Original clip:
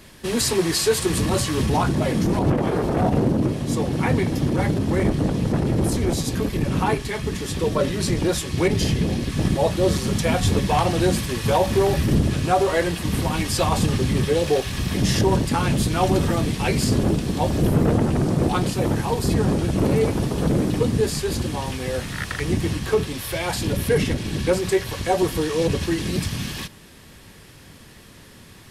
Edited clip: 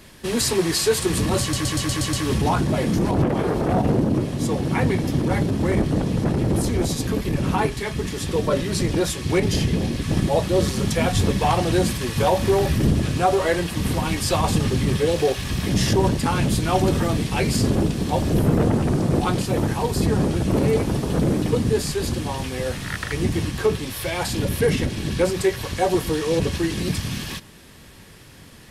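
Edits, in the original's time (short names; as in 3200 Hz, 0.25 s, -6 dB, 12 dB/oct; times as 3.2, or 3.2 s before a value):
1.41 stutter 0.12 s, 7 plays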